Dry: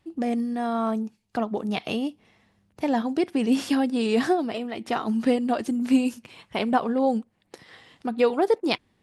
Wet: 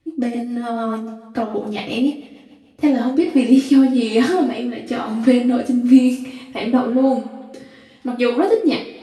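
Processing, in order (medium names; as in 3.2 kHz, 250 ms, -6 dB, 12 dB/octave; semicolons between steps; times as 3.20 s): two-slope reverb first 0.34 s, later 2 s, from -20 dB, DRR -6.5 dB; rotary cabinet horn 7 Hz, later 1 Hz, at 2.58 s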